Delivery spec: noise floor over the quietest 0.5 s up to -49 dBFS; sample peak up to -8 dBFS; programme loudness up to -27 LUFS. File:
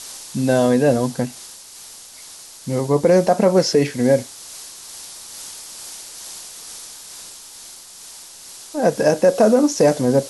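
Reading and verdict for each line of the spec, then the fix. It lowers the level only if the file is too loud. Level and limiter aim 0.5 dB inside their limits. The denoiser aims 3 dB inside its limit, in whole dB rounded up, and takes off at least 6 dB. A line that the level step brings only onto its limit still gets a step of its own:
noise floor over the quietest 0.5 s -40 dBFS: fail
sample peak -4.5 dBFS: fail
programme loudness -17.5 LUFS: fail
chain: trim -10 dB

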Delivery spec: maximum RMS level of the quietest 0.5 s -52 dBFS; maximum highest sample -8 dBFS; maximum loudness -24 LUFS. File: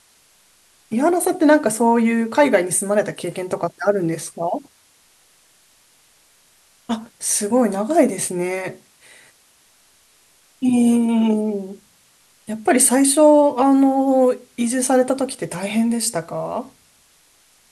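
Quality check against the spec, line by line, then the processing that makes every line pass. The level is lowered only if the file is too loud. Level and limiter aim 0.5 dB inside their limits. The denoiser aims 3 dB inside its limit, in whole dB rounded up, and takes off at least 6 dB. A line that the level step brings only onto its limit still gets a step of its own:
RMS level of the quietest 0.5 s -56 dBFS: pass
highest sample -2.5 dBFS: fail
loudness -18.0 LUFS: fail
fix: trim -6.5 dB

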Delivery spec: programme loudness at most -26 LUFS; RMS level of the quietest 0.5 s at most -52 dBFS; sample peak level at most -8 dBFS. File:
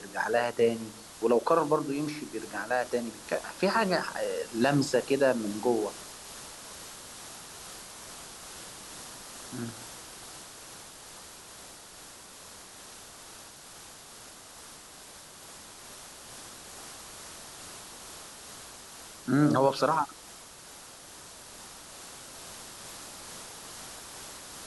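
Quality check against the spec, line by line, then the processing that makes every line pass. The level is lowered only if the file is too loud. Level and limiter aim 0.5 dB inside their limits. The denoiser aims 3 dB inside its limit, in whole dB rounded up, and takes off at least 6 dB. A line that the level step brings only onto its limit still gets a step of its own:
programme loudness -31.5 LUFS: pass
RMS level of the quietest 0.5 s -49 dBFS: fail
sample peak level -12.0 dBFS: pass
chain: noise reduction 6 dB, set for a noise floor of -49 dBFS

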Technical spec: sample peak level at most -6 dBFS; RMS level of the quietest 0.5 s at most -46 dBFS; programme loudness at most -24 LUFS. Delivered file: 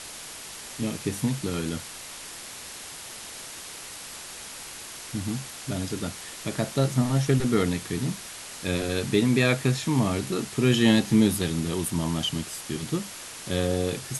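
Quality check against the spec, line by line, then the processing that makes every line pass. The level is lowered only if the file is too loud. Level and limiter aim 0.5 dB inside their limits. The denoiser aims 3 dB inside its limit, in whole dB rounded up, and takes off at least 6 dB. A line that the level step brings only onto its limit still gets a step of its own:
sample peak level -7.5 dBFS: pass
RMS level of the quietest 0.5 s -40 dBFS: fail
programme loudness -26.5 LUFS: pass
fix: noise reduction 9 dB, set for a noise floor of -40 dBFS

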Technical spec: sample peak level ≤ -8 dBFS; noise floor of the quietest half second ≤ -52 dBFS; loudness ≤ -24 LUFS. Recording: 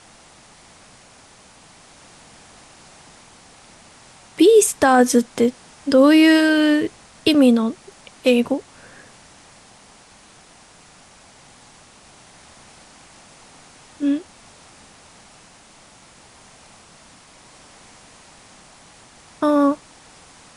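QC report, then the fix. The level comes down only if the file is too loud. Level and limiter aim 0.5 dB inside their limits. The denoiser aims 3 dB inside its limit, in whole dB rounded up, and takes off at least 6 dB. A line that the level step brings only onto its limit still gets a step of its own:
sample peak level -4.5 dBFS: fail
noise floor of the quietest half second -48 dBFS: fail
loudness -17.0 LUFS: fail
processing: trim -7.5 dB

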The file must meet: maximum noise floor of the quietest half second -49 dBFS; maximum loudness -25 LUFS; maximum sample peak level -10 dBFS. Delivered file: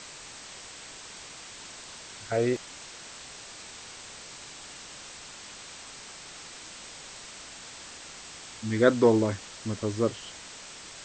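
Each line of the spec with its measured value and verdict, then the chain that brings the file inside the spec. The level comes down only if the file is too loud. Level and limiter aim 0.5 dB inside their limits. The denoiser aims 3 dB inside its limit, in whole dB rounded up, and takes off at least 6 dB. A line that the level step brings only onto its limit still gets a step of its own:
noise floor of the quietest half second -45 dBFS: fail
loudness -33.0 LUFS: pass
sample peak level -6.5 dBFS: fail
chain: noise reduction 7 dB, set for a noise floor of -45 dBFS; peak limiter -10.5 dBFS

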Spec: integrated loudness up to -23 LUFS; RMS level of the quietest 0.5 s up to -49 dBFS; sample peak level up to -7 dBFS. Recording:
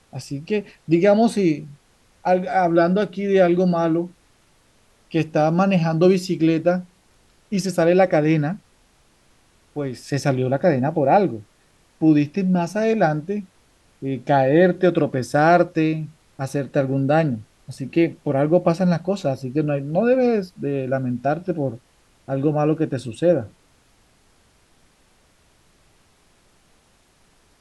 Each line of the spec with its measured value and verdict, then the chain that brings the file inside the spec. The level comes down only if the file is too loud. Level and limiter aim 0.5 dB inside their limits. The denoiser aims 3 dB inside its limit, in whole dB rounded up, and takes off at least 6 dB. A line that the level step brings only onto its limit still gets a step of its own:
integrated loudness -20.0 LUFS: fail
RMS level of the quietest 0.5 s -58 dBFS: pass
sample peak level -4.5 dBFS: fail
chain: trim -3.5 dB

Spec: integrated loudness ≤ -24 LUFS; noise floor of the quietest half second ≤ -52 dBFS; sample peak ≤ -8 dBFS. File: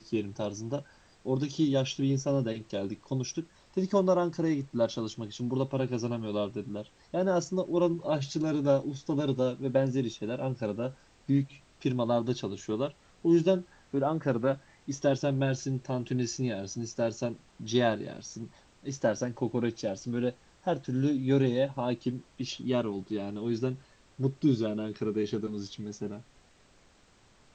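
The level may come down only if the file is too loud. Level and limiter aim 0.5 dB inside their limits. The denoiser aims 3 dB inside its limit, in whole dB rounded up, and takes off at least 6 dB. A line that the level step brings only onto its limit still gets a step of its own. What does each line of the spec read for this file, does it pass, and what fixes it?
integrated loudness -31.0 LUFS: pass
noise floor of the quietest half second -62 dBFS: pass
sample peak -13.0 dBFS: pass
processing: none needed

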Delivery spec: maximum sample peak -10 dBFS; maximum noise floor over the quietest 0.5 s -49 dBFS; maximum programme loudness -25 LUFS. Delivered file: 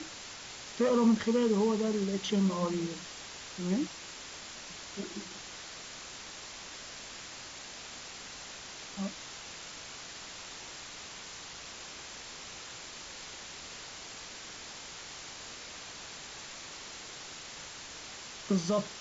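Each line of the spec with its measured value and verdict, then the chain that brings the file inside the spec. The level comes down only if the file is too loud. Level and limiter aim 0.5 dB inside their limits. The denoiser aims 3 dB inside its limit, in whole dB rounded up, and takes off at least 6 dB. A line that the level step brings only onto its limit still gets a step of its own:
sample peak -16.0 dBFS: pass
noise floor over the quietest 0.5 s -46 dBFS: fail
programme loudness -36.5 LUFS: pass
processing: noise reduction 6 dB, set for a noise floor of -46 dBFS

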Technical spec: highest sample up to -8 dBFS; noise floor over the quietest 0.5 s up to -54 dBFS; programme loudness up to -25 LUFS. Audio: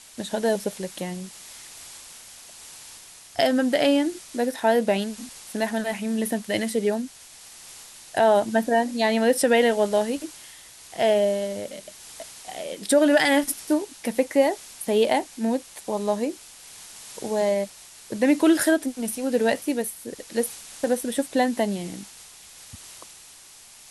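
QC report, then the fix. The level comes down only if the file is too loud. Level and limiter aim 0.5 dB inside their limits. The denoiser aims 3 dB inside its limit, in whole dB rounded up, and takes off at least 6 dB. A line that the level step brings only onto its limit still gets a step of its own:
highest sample -7.5 dBFS: fail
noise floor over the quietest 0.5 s -48 dBFS: fail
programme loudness -23.5 LUFS: fail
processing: noise reduction 7 dB, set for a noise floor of -48 dBFS; trim -2 dB

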